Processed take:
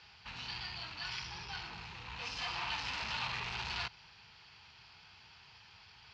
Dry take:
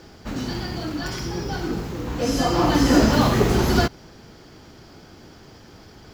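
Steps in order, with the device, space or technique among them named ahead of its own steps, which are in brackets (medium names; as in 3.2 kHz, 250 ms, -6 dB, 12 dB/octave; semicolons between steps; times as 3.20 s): scooped metal amplifier (valve stage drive 26 dB, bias 0.45; cabinet simulation 85–4600 Hz, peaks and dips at 570 Hz -9 dB, 920 Hz +8 dB, 2.6 kHz +10 dB, 4.3 kHz +3 dB; amplifier tone stack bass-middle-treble 10-0-10); trim -2.5 dB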